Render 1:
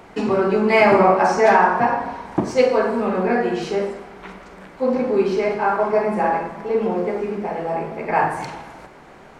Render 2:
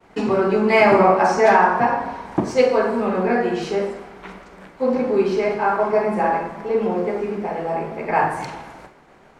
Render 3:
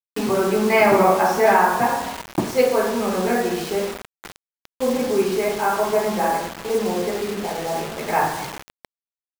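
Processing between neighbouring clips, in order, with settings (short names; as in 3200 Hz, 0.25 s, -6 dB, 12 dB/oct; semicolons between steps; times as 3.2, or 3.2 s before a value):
expander -38 dBFS
bit-crush 5-bit; gain -1.5 dB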